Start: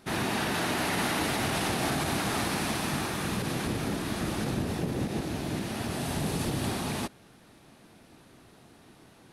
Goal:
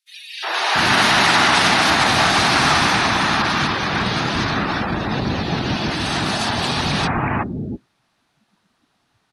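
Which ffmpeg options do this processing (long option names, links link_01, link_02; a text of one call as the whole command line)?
ffmpeg -i in.wav -filter_complex "[0:a]acrossover=split=450|2300[link_01][link_02][link_03];[link_02]adelay=360[link_04];[link_01]adelay=690[link_05];[link_05][link_04][link_03]amix=inputs=3:normalize=0,acrossover=split=810|6700[link_06][link_07][link_08];[link_07]dynaudnorm=framelen=250:gausssize=5:maxgain=11dB[link_09];[link_06][link_09][link_08]amix=inputs=3:normalize=0,afftdn=noise_reduction=24:noise_floor=-37,volume=8.5dB" out.wav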